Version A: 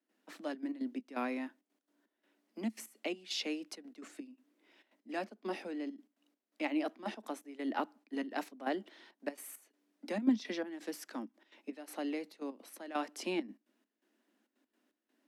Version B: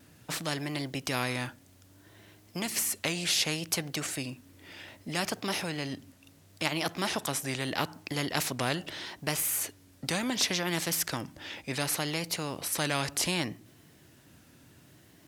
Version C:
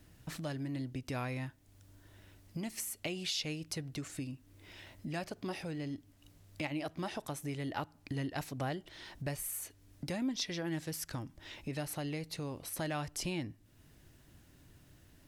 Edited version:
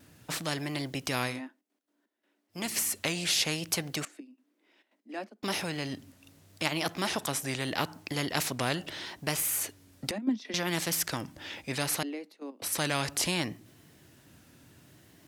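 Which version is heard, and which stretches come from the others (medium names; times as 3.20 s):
B
1.34–2.57 s: from A, crossfade 0.16 s
4.05–5.43 s: from A
10.11–10.54 s: from A
12.03–12.62 s: from A
not used: C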